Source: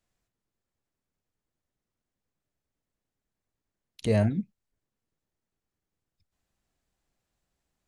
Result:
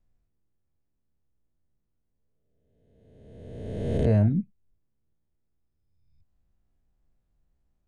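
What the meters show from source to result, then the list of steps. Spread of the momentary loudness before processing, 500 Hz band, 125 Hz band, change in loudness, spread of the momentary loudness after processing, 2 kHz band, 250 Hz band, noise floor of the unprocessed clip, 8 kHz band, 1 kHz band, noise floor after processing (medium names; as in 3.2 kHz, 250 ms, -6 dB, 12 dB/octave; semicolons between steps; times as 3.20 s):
13 LU, +1.0 dB, +5.5 dB, +2.0 dB, 21 LU, -5.0 dB, +3.0 dB, under -85 dBFS, no reading, -0.5 dB, -76 dBFS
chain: reverse spectral sustain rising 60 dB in 1.66 s; tilt EQ -3.5 dB/octave; trim -7 dB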